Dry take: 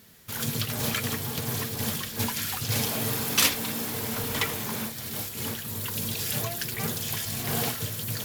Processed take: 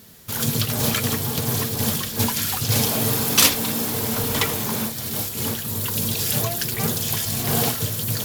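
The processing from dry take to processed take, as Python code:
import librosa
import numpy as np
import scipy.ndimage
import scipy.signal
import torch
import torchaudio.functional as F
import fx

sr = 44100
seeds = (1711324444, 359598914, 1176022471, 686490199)

y = fx.peak_eq(x, sr, hz=2000.0, db=-4.5, octaves=1.3)
y = y * librosa.db_to_amplitude(7.5)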